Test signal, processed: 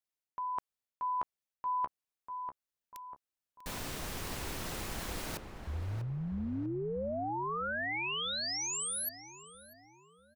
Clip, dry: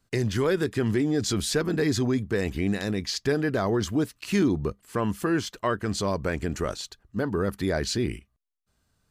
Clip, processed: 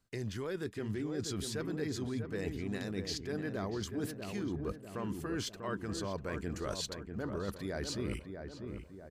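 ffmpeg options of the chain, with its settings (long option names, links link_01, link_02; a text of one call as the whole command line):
ffmpeg -i in.wav -filter_complex "[0:a]areverse,acompressor=threshold=-35dB:ratio=10,areverse,asplit=2[link_01][link_02];[link_02]adelay=644,lowpass=frequency=1500:poles=1,volume=-6dB,asplit=2[link_03][link_04];[link_04]adelay=644,lowpass=frequency=1500:poles=1,volume=0.53,asplit=2[link_05][link_06];[link_06]adelay=644,lowpass=frequency=1500:poles=1,volume=0.53,asplit=2[link_07][link_08];[link_08]adelay=644,lowpass=frequency=1500:poles=1,volume=0.53,asplit=2[link_09][link_10];[link_10]adelay=644,lowpass=frequency=1500:poles=1,volume=0.53,asplit=2[link_11][link_12];[link_12]adelay=644,lowpass=frequency=1500:poles=1,volume=0.53,asplit=2[link_13][link_14];[link_14]adelay=644,lowpass=frequency=1500:poles=1,volume=0.53[link_15];[link_01][link_03][link_05][link_07][link_09][link_11][link_13][link_15]amix=inputs=8:normalize=0" out.wav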